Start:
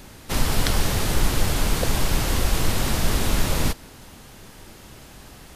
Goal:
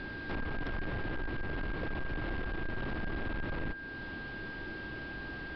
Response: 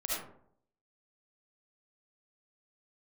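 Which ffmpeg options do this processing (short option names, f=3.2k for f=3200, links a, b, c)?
-filter_complex "[0:a]lowpass=4k,acrossover=split=3000[a][b];[b]acompressor=threshold=-52dB:ratio=4:attack=1:release=60[c];[a][c]amix=inputs=2:normalize=0,equalizer=f=320:t=o:w=0.56:g=8,acompressor=threshold=-35dB:ratio=2,aresample=11025,asoftclip=type=tanh:threshold=-32dB,aresample=44100,aeval=exprs='val(0)+0.00794*sin(2*PI*1600*n/s)':c=same"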